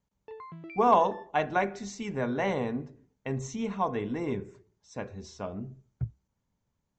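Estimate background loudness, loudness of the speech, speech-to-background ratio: −46.5 LKFS, −30.5 LKFS, 16.0 dB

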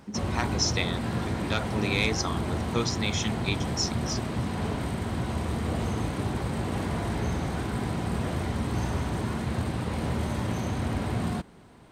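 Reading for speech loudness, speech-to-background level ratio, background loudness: −30.5 LKFS, 0.0 dB, −30.5 LKFS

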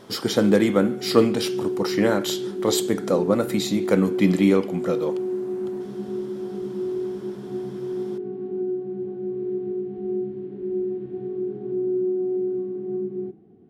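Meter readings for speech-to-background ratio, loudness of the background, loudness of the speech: 7.0 dB, −29.0 LKFS, −22.0 LKFS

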